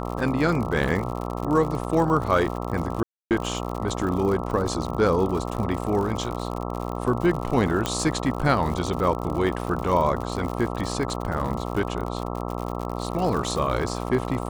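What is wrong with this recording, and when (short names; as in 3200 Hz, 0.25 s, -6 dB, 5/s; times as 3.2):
buzz 60 Hz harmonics 22 -30 dBFS
crackle 89/s -29 dBFS
3.03–3.31 gap 0.278 s
7.86 pop -9 dBFS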